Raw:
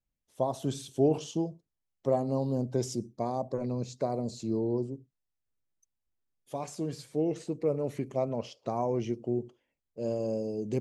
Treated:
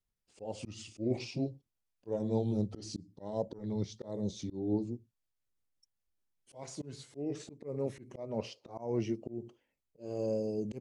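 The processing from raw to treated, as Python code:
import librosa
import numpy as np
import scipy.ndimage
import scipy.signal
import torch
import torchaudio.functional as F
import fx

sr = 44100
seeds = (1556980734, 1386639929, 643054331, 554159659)

y = fx.pitch_glide(x, sr, semitones=-4.0, runs='ending unshifted')
y = fx.auto_swell(y, sr, attack_ms=222.0)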